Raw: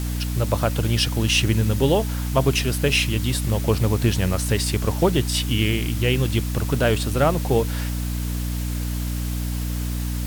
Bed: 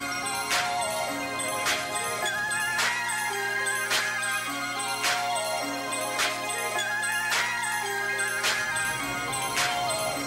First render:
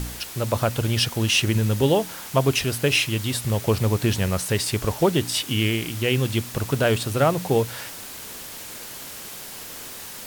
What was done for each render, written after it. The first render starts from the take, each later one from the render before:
hum removal 60 Hz, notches 5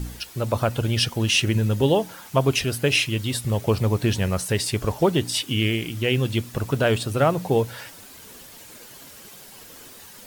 broadband denoise 9 dB, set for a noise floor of −38 dBFS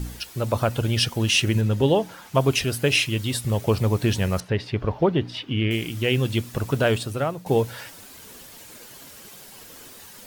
0:01.61–0:02.35: high-shelf EQ 6,800 Hz −8 dB
0:04.40–0:05.71: high-frequency loss of the air 300 metres
0:06.86–0:07.46: fade out, to −13 dB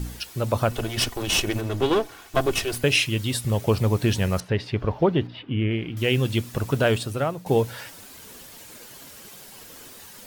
0:00.71–0:02.84: lower of the sound and its delayed copy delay 2.7 ms
0:05.27–0:05.97: high-frequency loss of the air 390 metres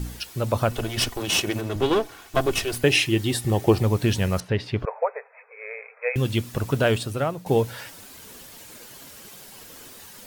0:01.20–0:01.76: high-pass filter 100 Hz
0:02.84–0:03.83: hollow resonant body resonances 350/770/1,800 Hz, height 11 dB
0:04.85–0:06.16: linear-phase brick-wall band-pass 430–2,600 Hz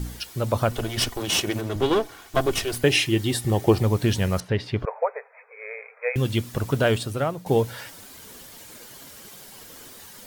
notch filter 2,600 Hz, Q 21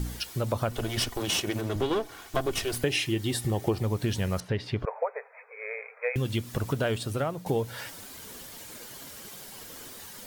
downward compressor 2.5 to 1, threshold −27 dBFS, peak gain reduction 10.5 dB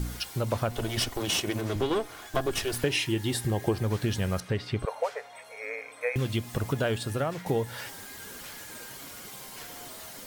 mix in bed −22 dB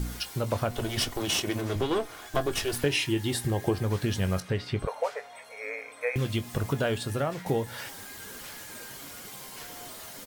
double-tracking delay 21 ms −12 dB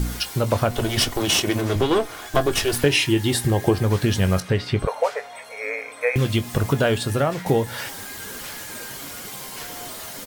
level +8 dB

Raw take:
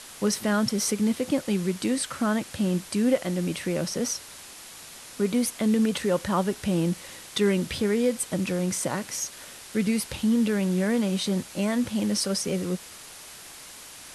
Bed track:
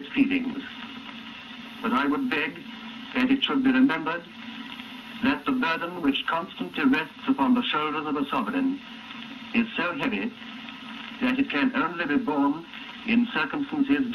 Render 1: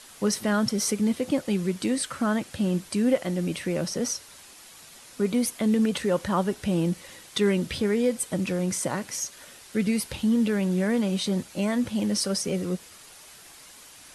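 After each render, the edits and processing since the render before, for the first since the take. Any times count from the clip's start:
broadband denoise 6 dB, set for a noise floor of −45 dBFS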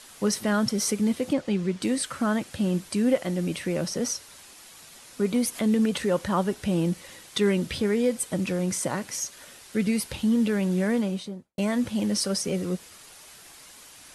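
0:01.33–0:01.82: high-frequency loss of the air 72 metres
0:05.36–0:06.10: upward compression, threshold −28 dBFS
0:10.89–0:11.58: fade out and dull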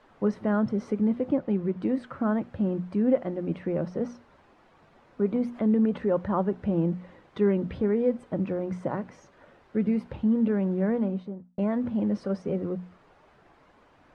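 low-pass filter 1,100 Hz 12 dB per octave
mains-hum notches 60/120/180/240 Hz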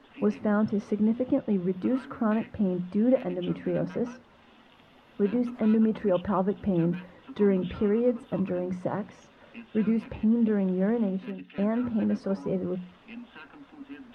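mix in bed track −21 dB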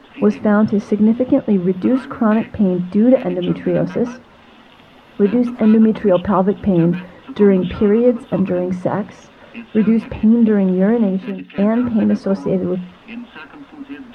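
level +11.5 dB
brickwall limiter −2 dBFS, peak gain reduction 1 dB

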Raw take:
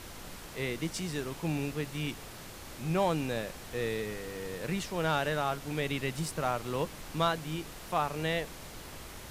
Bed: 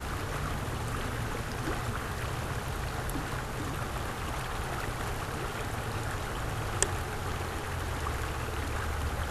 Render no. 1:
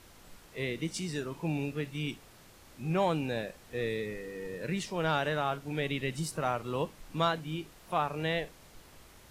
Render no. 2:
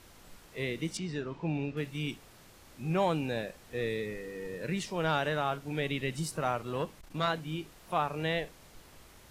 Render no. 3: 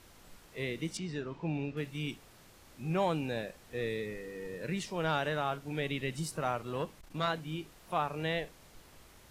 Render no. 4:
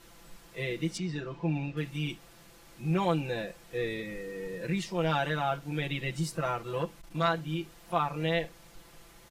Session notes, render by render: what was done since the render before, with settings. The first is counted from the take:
noise reduction from a noise print 10 dB
0:00.97–0:01.77: high-frequency loss of the air 150 metres; 0:06.62–0:07.30: saturating transformer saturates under 630 Hz
level −2 dB
dynamic equaliser 9,900 Hz, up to −3 dB, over −58 dBFS, Q 1.1; comb filter 5.9 ms, depth 95%

